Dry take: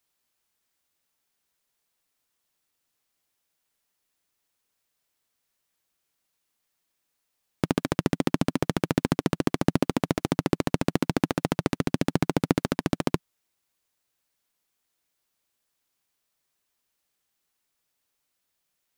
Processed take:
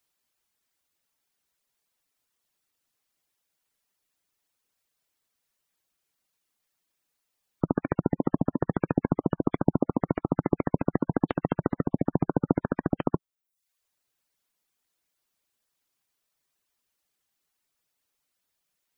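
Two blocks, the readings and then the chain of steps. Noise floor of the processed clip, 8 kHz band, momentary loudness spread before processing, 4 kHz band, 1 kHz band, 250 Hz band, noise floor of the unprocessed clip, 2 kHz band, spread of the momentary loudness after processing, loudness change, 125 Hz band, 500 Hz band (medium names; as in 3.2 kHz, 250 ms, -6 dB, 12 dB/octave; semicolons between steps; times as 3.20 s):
-81 dBFS, under -30 dB, 3 LU, under -20 dB, -1.5 dB, -0.5 dB, -79 dBFS, -7.5 dB, 3 LU, -1.0 dB, -0.5 dB, -0.5 dB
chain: reverb removal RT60 0.57 s; spectral gate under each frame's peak -20 dB strong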